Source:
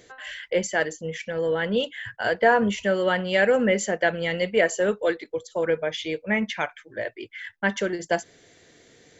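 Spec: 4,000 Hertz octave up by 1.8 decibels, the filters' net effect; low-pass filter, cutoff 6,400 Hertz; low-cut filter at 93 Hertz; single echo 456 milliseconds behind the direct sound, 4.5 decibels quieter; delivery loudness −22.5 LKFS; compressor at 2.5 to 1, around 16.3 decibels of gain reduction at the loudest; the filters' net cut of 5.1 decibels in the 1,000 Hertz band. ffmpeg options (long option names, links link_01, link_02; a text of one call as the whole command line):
ffmpeg -i in.wav -af "highpass=93,lowpass=6400,equalizer=frequency=1000:width_type=o:gain=-8.5,equalizer=frequency=4000:width_type=o:gain=4,acompressor=threshold=-43dB:ratio=2.5,aecho=1:1:456:0.596,volume=16.5dB" out.wav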